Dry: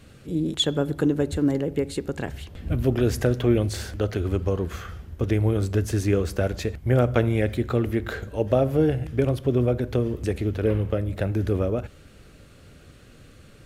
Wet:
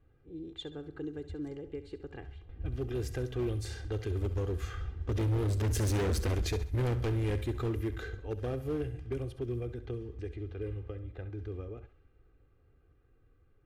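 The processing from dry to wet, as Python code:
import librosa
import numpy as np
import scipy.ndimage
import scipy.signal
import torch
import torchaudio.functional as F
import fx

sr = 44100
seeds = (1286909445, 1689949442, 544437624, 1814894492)

p1 = fx.doppler_pass(x, sr, speed_mps=8, closest_m=2.8, pass_at_s=5.99)
p2 = fx.env_lowpass(p1, sr, base_hz=1500.0, full_db=-36.5)
p3 = fx.low_shelf(p2, sr, hz=73.0, db=7.5)
p4 = p3 + 0.65 * np.pad(p3, (int(2.5 * sr / 1000.0), 0))[:len(p3)]
p5 = fx.rider(p4, sr, range_db=4, speed_s=0.5)
p6 = p4 + (p5 * librosa.db_to_amplitude(2.0))
p7 = np.clip(p6, -10.0 ** (-21.5 / 20.0), 10.0 ** (-21.5 / 20.0))
p8 = p7 + fx.echo_thinned(p7, sr, ms=67, feedback_pct=39, hz=420.0, wet_db=-13, dry=0)
p9 = fx.dynamic_eq(p8, sr, hz=850.0, q=0.91, threshold_db=-42.0, ratio=4.0, max_db=-6)
y = p9 * librosa.db_to_amplitude(-5.0)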